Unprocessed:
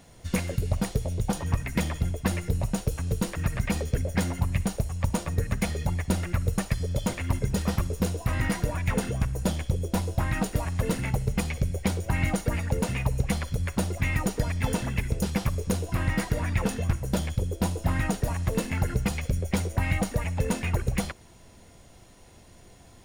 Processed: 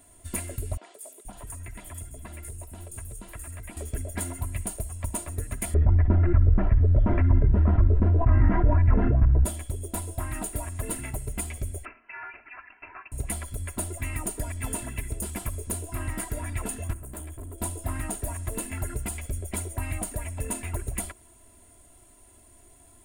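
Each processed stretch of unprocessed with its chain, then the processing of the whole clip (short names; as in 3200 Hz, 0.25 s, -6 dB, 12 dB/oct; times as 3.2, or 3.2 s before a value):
0.77–3.77 compressor 3:1, threshold -32 dBFS + three bands offset in time mids, highs, lows 0.17/0.48 s, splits 350/5300 Hz
5.74–9.45 LPF 1800 Hz 24 dB/oct + low shelf 270 Hz +11.5 dB + fast leveller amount 70%
11.85–13.12 steep high-pass 980 Hz 48 dB/oct + inverted band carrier 3600 Hz
16.93–17.58 bell 4500 Hz -14.5 dB 1.2 oct + overloaded stage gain 31.5 dB
whole clip: resonant high shelf 7000 Hz +8 dB, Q 3; comb 3 ms, depth 73%; gain -7 dB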